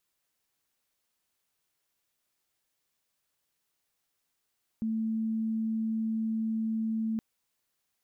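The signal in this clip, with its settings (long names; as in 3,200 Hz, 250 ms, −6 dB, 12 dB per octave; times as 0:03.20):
tone sine 222 Hz −27.5 dBFS 2.37 s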